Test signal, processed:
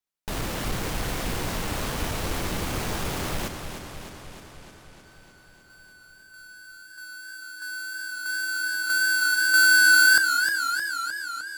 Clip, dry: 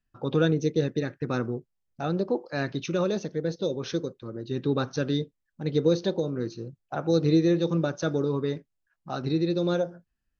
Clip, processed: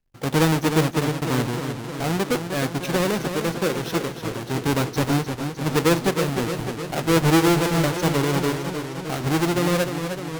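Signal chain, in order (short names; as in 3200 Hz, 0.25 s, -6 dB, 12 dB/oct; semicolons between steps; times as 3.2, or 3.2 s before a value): half-waves squared off; vibrato 1.8 Hz 12 cents; warbling echo 0.306 s, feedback 68%, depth 86 cents, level -8 dB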